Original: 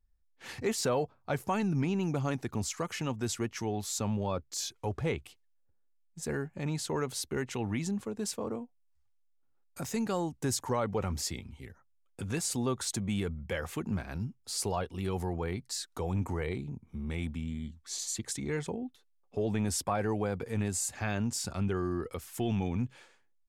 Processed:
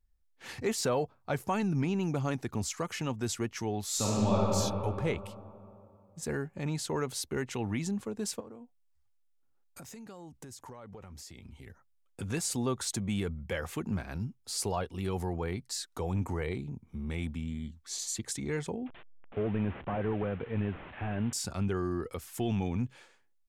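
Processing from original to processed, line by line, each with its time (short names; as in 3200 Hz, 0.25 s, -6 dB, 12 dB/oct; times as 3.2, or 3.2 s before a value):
3.85–4.51 reverb throw, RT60 2.8 s, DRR -5.5 dB
8.4–11.67 compressor 10:1, threshold -44 dBFS
18.86–21.33 delta modulation 16 kbps, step -43 dBFS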